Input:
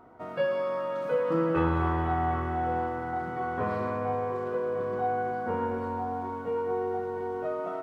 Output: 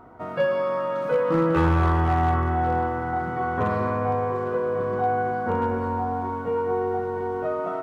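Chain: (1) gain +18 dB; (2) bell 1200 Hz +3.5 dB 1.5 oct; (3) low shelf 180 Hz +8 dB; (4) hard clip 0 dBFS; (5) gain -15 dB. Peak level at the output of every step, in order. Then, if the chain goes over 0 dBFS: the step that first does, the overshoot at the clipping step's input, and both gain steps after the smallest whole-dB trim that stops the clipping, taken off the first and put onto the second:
+3.5, +4.5, +7.0, 0.0, -15.0 dBFS; step 1, 7.0 dB; step 1 +11 dB, step 5 -8 dB

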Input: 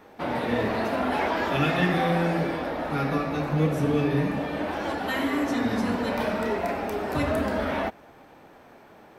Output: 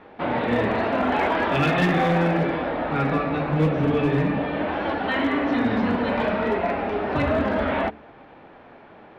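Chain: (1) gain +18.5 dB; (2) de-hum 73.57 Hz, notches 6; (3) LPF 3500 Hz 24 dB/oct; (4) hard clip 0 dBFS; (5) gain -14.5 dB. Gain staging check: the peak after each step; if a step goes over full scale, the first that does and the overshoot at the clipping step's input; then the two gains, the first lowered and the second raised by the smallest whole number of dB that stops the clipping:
+7.5, +8.0, +8.0, 0.0, -14.5 dBFS; step 1, 8.0 dB; step 1 +10.5 dB, step 5 -6.5 dB

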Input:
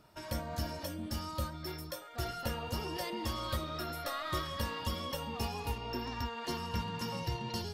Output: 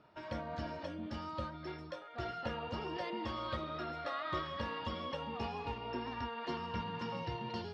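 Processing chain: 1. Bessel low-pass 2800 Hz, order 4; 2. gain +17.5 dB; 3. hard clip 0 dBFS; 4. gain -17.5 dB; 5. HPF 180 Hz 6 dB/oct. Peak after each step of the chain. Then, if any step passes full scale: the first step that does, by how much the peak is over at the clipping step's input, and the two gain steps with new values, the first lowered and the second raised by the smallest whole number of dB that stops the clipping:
-22.5, -5.0, -5.0, -22.5, -24.5 dBFS; no overload

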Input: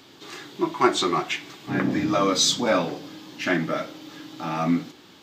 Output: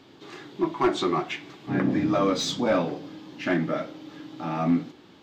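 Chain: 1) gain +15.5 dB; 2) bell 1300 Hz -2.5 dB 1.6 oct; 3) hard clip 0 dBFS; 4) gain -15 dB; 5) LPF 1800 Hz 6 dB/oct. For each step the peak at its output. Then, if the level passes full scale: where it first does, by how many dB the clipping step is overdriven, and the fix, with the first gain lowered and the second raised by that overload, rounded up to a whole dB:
+10.5, +9.0, 0.0, -15.0, -15.0 dBFS; step 1, 9.0 dB; step 1 +6.5 dB, step 4 -6 dB

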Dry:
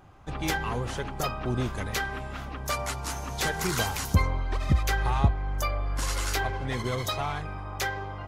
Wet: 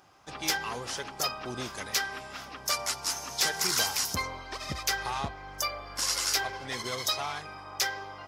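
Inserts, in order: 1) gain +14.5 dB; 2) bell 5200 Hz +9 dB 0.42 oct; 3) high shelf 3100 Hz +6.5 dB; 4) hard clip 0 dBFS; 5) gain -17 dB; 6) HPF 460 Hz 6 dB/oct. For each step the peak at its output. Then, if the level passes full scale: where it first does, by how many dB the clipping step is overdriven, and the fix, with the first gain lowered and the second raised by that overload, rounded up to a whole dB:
+4.5, +4.5, +5.0, 0.0, -17.0, -15.0 dBFS; step 1, 5.0 dB; step 1 +9.5 dB, step 5 -12 dB

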